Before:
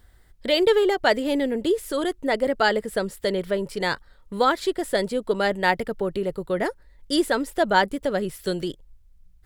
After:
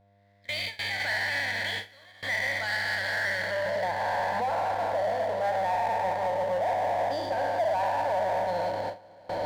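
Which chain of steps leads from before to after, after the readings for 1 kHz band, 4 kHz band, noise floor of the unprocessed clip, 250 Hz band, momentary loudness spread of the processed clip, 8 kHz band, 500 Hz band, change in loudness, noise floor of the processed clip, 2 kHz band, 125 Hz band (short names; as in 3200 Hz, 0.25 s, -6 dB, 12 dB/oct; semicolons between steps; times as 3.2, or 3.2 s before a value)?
-0.5 dB, -5.5 dB, -54 dBFS, -19.0 dB, 5 LU, -7.0 dB, -6.0 dB, -4.5 dB, -55 dBFS, -1.0 dB, -5.5 dB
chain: spectral trails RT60 2.08 s; recorder AGC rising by 32 dB/s; band-pass sweep 2500 Hz -> 720 Hz, 3.07–3.88; limiter -20.5 dBFS, peak gain reduction 11 dB; notches 50/100/150/200/250/300/350/400/450/500 Hz; buzz 100 Hz, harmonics 7, -47 dBFS -1 dB/oct; fixed phaser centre 1900 Hz, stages 8; diffused feedback echo 0.5 s, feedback 52%, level -11 dB; power-law curve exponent 0.7; gate with hold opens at -23 dBFS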